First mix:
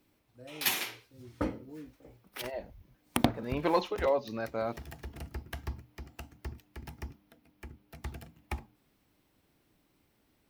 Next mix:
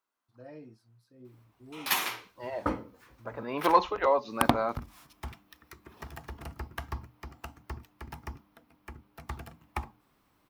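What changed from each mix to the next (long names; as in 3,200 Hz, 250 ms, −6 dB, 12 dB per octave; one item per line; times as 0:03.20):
second voice: add high-pass filter 180 Hz
background: entry +1.25 s
master: add parametric band 1,100 Hz +10.5 dB 0.9 octaves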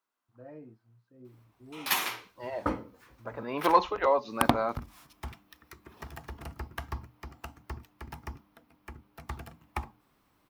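first voice: add low-pass filter 1,800 Hz 12 dB per octave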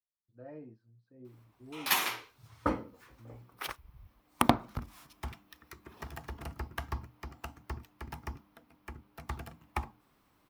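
second voice: muted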